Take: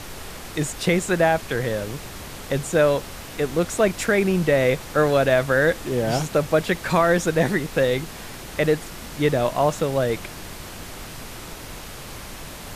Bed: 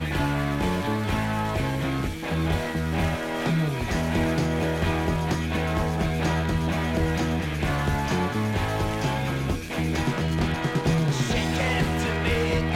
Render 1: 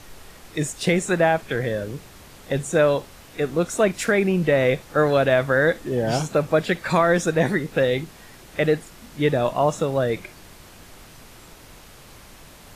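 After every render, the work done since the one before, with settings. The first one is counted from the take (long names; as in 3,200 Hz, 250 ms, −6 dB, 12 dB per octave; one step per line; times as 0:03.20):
noise reduction from a noise print 9 dB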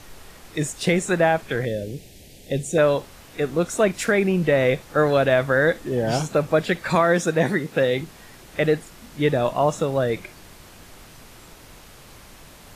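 0:01.65–0:02.78: Butterworth band-reject 1,200 Hz, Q 0.76
0:06.95–0:08.01: high-pass filter 100 Hz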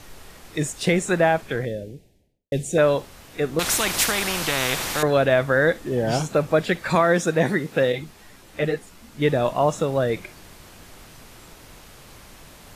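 0:01.31–0:02.52: fade out and dull
0:03.59–0:05.03: every bin compressed towards the loudest bin 4 to 1
0:07.92–0:09.22: string-ensemble chorus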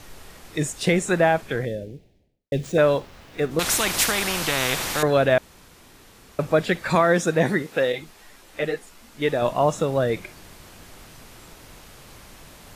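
0:01.75–0:03.51: running median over 5 samples
0:05.38–0:06.39: fill with room tone
0:07.62–0:09.42: parametric band 120 Hz −9 dB 2.3 octaves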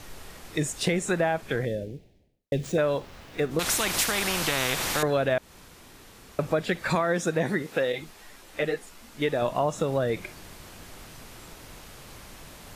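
downward compressor 3 to 1, threshold −23 dBFS, peak gain reduction 8 dB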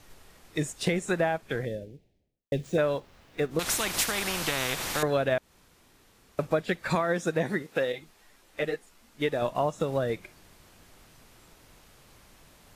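expander for the loud parts 1.5 to 1, over −41 dBFS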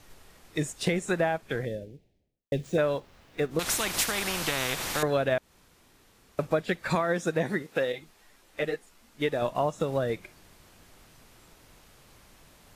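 no processing that can be heard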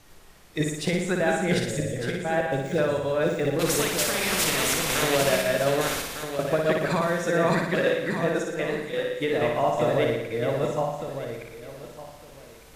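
feedback delay that plays each chunk backwards 602 ms, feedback 41%, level 0 dB
flutter between parallel walls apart 10 metres, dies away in 0.79 s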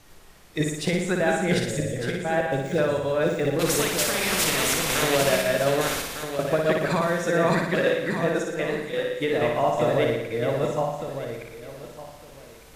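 level +1 dB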